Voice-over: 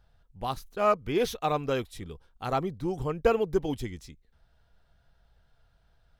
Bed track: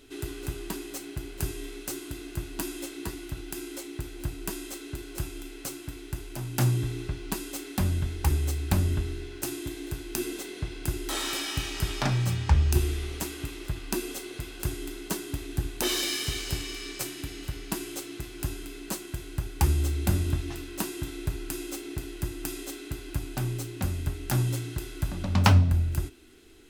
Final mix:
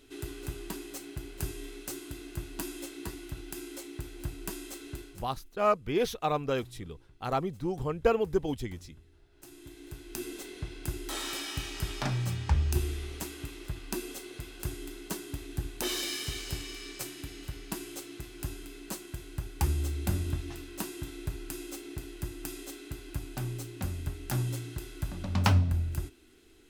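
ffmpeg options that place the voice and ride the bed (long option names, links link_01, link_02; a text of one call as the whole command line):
ffmpeg -i stem1.wav -i stem2.wav -filter_complex "[0:a]adelay=4800,volume=-1.5dB[link_01];[1:a]volume=19dB,afade=type=out:start_time=4.97:duration=0.3:silence=0.0630957,afade=type=in:start_time=9.3:duration=1.14:silence=0.0707946[link_02];[link_01][link_02]amix=inputs=2:normalize=0" out.wav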